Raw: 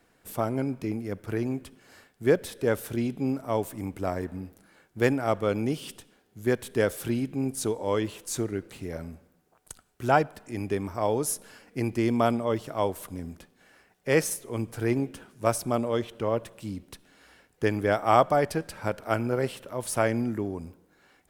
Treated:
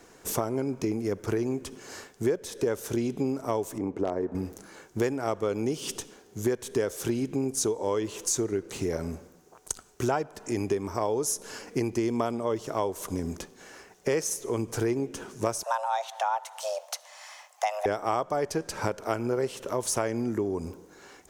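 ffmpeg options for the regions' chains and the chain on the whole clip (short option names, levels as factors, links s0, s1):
-filter_complex "[0:a]asettb=1/sr,asplit=3[s0][s1][s2];[s0]atrim=end=3.784[s3];[s1]atrim=start=3.78:end=4.35,asetpts=PTS-STARTPTS,afade=t=in:d=0.004:c=qsin,afade=t=out:st=0.566:d=0.004:c=qsin,bandpass=f=420:t=q:w=0.57,aeval=exprs='0.0944*(abs(mod(val(0)/0.0944+3,4)-2)-1)':c=same[s4];[s2]atrim=start=4.346[s5];[s3][s4]acrossfade=d=0.004:c1=hsin:c2=qsin[s6];[s6][s5]acrossfade=d=0.004:c1=qsin:c2=hsin,asettb=1/sr,asplit=3[s7][s8][s9];[s7]atrim=end=15.634[s10];[s8]atrim=start=15.63:end=17.86,asetpts=PTS-STARTPTS,afade=t=in:d=0.004:c=qsin,afade=t=out:st=2.226:d=0.004:c=qsin,highpass=f=280:w=0.5412,highpass=f=280:w=1.3066,afreqshift=320[s11];[s9]atrim=start=17.856[s12];[s10][s11]acrossfade=d=0.004:c1=hsin:c2=qsin[s13];[s13][s12]acrossfade=d=0.004:c1=qsin:c2=hsin,equalizer=f=400:t=o:w=0.67:g=8,equalizer=f=1000:t=o:w=0.67:g=5,equalizer=f=6300:t=o:w=0.67:g=12,acompressor=threshold=0.0224:ratio=5,volume=2.24"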